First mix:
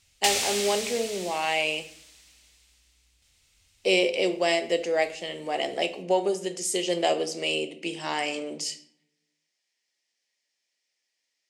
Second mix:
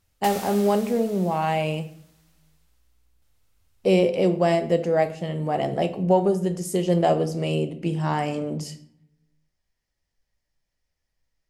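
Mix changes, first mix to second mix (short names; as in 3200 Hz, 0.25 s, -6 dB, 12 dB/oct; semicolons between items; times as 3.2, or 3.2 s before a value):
speech: remove ladder high-pass 250 Hz, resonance 20%; master: add band shelf 4200 Hz -13 dB 2.5 oct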